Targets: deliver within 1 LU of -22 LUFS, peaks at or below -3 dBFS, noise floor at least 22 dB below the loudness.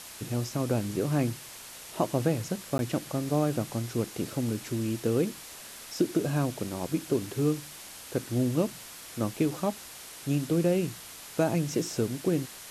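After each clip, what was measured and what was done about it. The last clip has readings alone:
dropouts 1; longest dropout 11 ms; noise floor -45 dBFS; noise floor target -52 dBFS; loudness -30.0 LUFS; peak level -12.0 dBFS; loudness target -22.0 LUFS
-> interpolate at 2.78 s, 11 ms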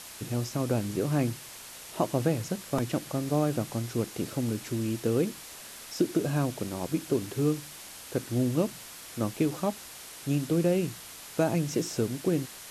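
dropouts 0; noise floor -45 dBFS; noise floor target -52 dBFS
-> noise reduction 7 dB, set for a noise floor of -45 dBFS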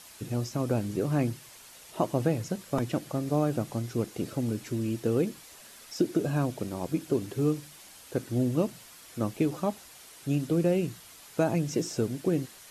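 noise floor -51 dBFS; noise floor target -52 dBFS
-> noise reduction 6 dB, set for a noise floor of -51 dBFS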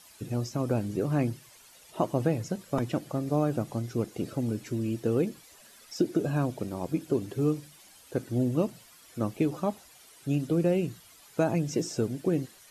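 noise floor -55 dBFS; loudness -30.0 LUFS; peak level -12.0 dBFS; loudness target -22.0 LUFS
-> trim +8 dB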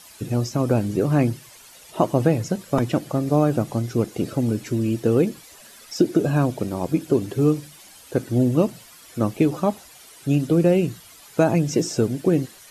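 loudness -22.0 LUFS; peak level -4.0 dBFS; noise floor -47 dBFS

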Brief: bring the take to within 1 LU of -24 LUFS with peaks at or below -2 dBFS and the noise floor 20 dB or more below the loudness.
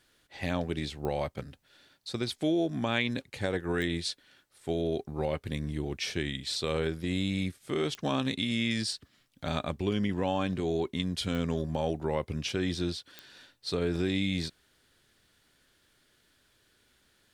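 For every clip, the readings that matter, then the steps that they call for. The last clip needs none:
clicks found 5; loudness -32.0 LUFS; peak level -14.0 dBFS; loudness target -24.0 LUFS
-> de-click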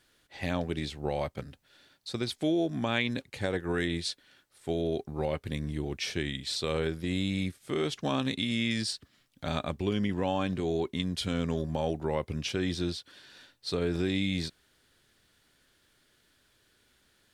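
clicks found 0; loudness -32.0 LUFS; peak level -14.0 dBFS; loudness target -24.0 LUFS
-> trim +8 dB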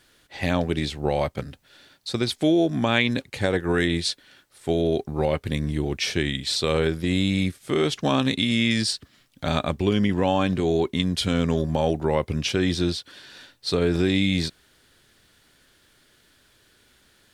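loudness -24.0 LUFS; peak level -6.0 dBFS; noise floor -60 dBFS

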